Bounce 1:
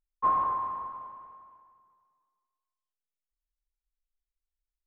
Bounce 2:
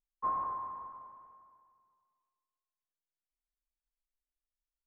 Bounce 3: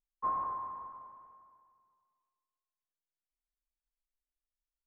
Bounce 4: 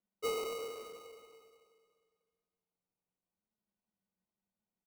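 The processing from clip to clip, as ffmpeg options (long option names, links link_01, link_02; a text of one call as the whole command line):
ffmpeg -i in.wav -af "lowpass=1900,volume=-7.5dB" out.wav
ffmpeg -i in.wav -af anull out.wav
ffmpeg -i in.wav -filter_complex "[0:a]afreqshift=180,acrusher=samples=26:mix=1:aa=0.000001,asplit=2[link_01][link_02];[link_02]adelay=370,highpass=300,lowpass=3400,asoftclip=type=hard:threshold=-34.5dB,volume=-14dB[link_03];[link_01][link_03]amix=inputs=2:normalize=0,volume=-2.5dB" out.wav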